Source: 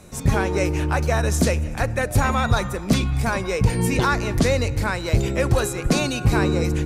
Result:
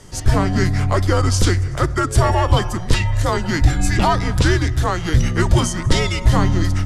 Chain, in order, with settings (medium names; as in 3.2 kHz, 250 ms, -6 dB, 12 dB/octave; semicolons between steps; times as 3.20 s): frequency shift -170 Hz; formant shift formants -3 st; trim +4.5 dB